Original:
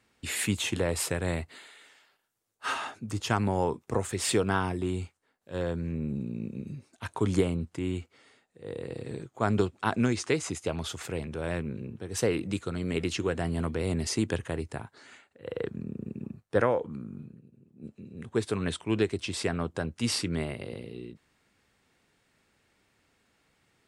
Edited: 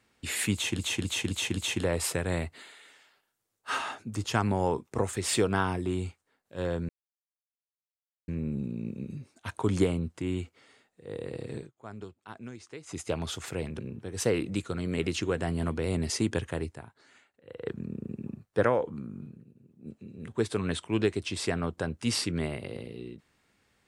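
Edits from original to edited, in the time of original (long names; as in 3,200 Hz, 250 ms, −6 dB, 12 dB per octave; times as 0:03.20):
0:00.53–0:00.79: repeat, 5 plays
0:05.85: splice in silence 1.39 s
0:09.13–0:10.58: duck −17 dB, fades 0.15 s
0:11.36–0:11.76: remove
0:14.69–0:15.63: clip gain −7.5 dB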